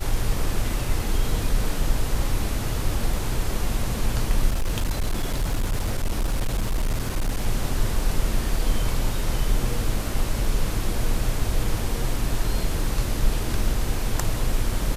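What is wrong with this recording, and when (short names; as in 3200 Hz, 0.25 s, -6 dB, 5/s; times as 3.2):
4.49–7.46 clipped -19 dBFS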